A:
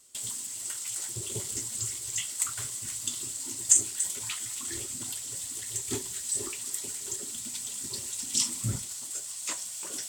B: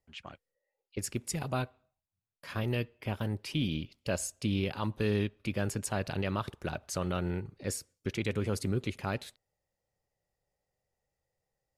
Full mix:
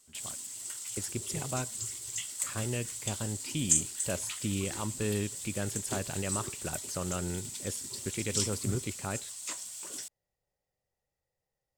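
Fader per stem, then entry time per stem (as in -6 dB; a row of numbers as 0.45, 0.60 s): -4.5, -2.5 dB; 0.00, 0.00 s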